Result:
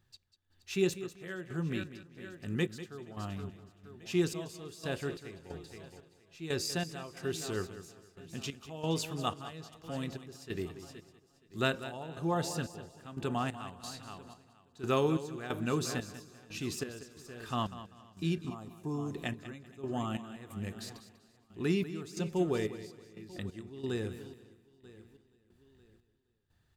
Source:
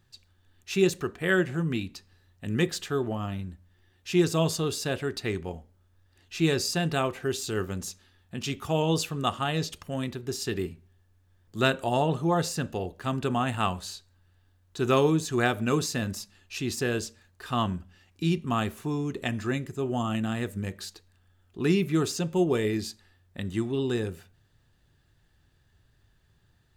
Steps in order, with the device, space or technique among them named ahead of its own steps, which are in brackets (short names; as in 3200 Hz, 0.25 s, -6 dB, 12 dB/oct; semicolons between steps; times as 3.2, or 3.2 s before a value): 18.38–19.14 band shelf 2400 Hz -13.5 dB; feedback echo 0.471 s, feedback 55%, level -14.5 dB; trance gate with a delay (step gate "x..xxx...x" 90 bpm -12 dB; feedback echo 0.194 s, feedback 26%, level -13.5 dB); gain -6.5 dB